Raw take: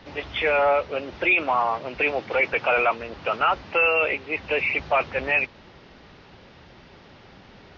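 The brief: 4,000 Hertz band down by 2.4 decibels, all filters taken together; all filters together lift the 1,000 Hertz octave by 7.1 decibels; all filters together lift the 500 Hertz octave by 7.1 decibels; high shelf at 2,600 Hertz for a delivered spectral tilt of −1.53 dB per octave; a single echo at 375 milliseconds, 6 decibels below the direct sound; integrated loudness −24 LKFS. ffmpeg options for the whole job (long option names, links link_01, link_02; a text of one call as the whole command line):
ffmpeg -i in.wav -af "equalizer=frequency=500:width_type=o:gain=6,equalizer=frequency=1000:width_type=o:gain=7.5,highshelf=frequency=2600:gain=3.5,equalizer=frequency=4000:width_type=o:gain=-8.5,aecho=1:1:375:0.501,volume=-6.5dB" out.wav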